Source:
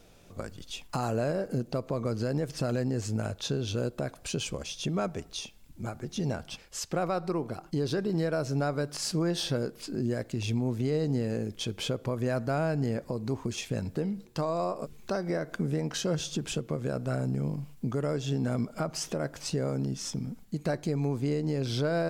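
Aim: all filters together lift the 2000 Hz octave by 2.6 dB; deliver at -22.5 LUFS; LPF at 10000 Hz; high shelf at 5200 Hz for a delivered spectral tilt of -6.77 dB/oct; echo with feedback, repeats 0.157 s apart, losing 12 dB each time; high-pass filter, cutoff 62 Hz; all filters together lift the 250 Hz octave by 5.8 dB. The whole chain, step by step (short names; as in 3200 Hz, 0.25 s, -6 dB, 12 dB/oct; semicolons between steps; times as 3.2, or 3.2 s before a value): HPF 62 Hz; LPF 10000 Hz; bell 250 Hz +7.5 dB; bell 2000 Hz +5 dB; high shelf 5200 Hz -9 dB; feedback echo 0.157 s, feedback 25%, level -12 dB; gain +5.5 dB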